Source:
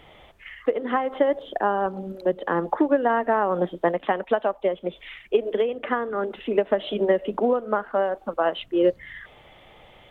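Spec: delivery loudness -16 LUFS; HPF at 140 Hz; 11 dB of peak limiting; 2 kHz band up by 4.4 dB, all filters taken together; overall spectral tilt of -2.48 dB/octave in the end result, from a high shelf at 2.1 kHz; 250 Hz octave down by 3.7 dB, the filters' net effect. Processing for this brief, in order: high-pass 140 Hz; peaking EQ 250 Hz -5 dB; peaking EQ 2 kHz +7.5 dB; treble shelf 2.1 kHz -3.5 dB; trim +14 dB; peak limiter -4.5 dBFS

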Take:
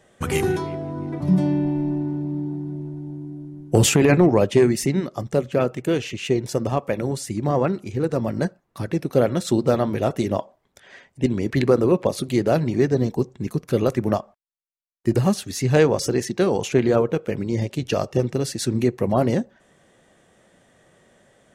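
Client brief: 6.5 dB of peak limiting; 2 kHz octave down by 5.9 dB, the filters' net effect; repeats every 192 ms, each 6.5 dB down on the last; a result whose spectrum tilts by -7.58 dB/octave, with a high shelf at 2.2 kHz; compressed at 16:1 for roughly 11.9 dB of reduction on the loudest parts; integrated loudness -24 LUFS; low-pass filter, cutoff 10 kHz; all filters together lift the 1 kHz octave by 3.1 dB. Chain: low-pass 10 kHz; peaking EQ 1 kHz +7 dB; peaking EQ 2 kHz -8.5 dB; treble shelf 2.2 kHz -3.5 dB; compression 16:1, threshold -22 dBFS; peak limiter -17.5 dBFS; feedback delay 192 ms, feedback 47%, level -6.5 dB; trim +5 dB

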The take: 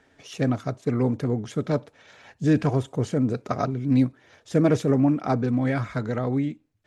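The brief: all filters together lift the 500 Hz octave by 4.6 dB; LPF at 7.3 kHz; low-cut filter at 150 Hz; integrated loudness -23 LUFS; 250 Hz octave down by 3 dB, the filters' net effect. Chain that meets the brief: high-pass 150 Hz; low-pass 7.3 kHz; peaking EQ 250 Hz -5 dB; peaking EQ 500 Hz +7 dB; trim +2 dB

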